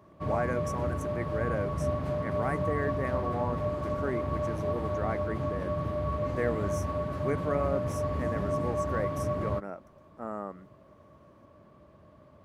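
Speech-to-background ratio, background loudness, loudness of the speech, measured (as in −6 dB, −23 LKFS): −4.5 dB, −32.0 LKFS, −36.5 LKFS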